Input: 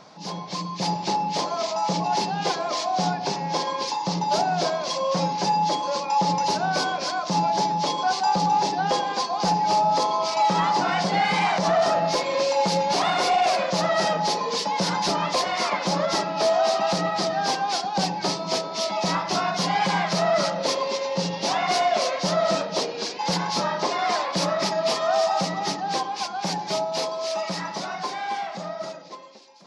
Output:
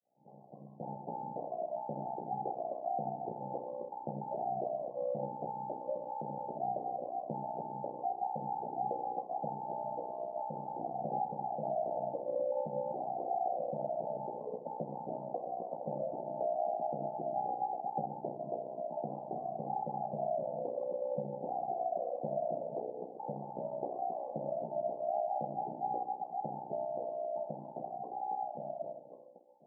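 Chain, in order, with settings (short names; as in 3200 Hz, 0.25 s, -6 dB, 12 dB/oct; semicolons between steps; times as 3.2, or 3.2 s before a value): opening faded in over 1.26 s; HPF 540 Hz 6 dB/oct; compressor 3:1, threshold -27 dBFS, peak gain reduction 7 dB; rippled Chebyshev low-pass 810 Hz, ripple 3 dB; ring modulator 31 Hz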